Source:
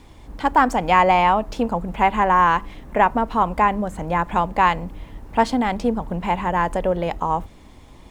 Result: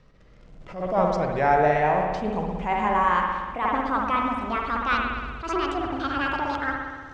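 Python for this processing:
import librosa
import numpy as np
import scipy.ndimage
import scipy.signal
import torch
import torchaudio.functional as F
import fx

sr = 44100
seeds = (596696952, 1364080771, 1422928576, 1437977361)

p1 = fx.speed_glide(x, sr, from_pct=53, to_pct=174)
p2 = fx.quant_dither(p1, sr, seeds[0], bits=6, dither='none')
p3 = p1 + (p2 * librosa.db_to_amplitude(-11.5))
p4 = scipy.signal.sosfilt(scipy.signal.butter(4, 7300.0, 'lowpass', fs=sr, output='sos'), p3)
p5 = fx.rev_spring(p4, sr, rt60_s=1.5, pass_ms=(60,), chirp_ms=50, drr_db=1.0)
p6 = fx.attack_slew(p5, sr, db_per_s=110.0)
y = p6 * librosa.db_to_amplitude(-9.0)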